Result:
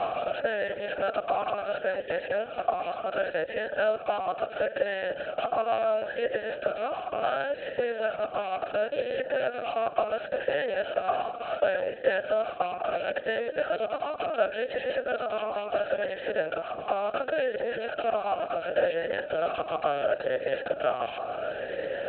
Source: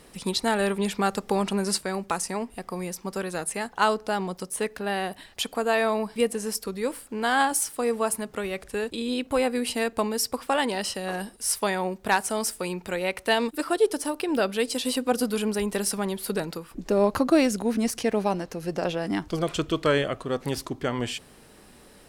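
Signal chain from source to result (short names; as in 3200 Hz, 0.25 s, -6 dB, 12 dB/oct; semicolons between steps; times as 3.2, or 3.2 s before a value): per-bin compression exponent 0.2; reverb removal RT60 1.3 s; LPC vocoder at 8 kHz pitch kept; vowel sweep a-e 0.71 Hz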